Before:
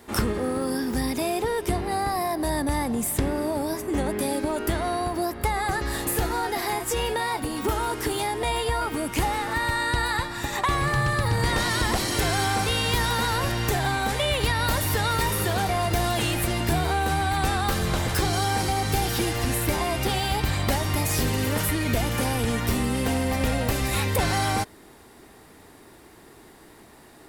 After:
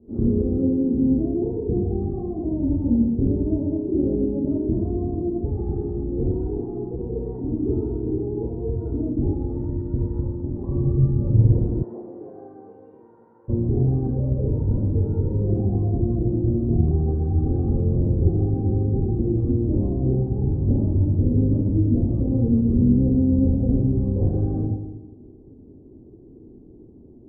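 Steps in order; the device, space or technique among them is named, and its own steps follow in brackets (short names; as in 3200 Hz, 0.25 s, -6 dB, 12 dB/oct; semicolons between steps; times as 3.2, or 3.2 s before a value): next room (LPF 380 Hz 24 dB/oct; reverb RT60 1.1 s, pre-delay 17 ms, DRR -5.5 dB); 11.82–13.48 HPF 500 Hz -> 1500 Hz 12 dB/oct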